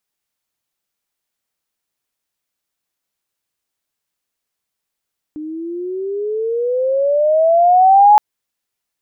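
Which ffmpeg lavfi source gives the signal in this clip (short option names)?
-f lavfi -i "aevalsrc='pow(10,(-4+20.5*(t/2.82-1))/20)*sin(2*PI*301*2.82/(18*log(2)/12)*(exp(18*log(2)/12*t/2.82)-1))':d=2.82:s=44100"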